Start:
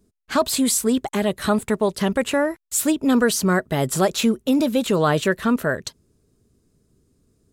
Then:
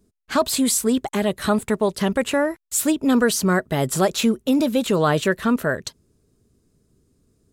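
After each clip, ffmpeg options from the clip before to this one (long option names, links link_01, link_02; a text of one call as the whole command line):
ffmpeg -i in.wav -af anull out.wav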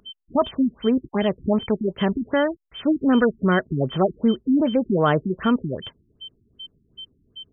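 ffmpeg -i in.wav -af "aeval=exprs='val(0)+0.0224*sin(2*PI*3100*n/s)':channel_layout=same,afftfilt=real='re*lt(b*sr/1024,360*pow(3600/360,0.5+0.5*sin(2*PI*2.6*pts/sr)))':imag='im*lt(b*sr/1024,360*pow(3600/360,0.5+0.5*sin(2*PI*2.6*pts/sr)))':win_size=1024:overlap=0.75" out.wav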